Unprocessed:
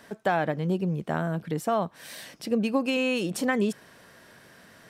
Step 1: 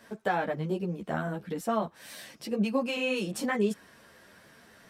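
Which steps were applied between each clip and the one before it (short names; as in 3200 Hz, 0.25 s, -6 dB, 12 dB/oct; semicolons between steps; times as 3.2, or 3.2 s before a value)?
ensemble effect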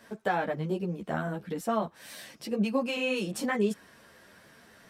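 nothing audible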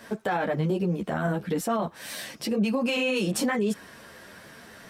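limiter -26.5 dBFS, peak gain reduction 11 dB; gain +8.5 dB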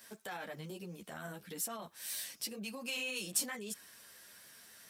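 pre-emphasis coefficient 0.9; gain -1 dB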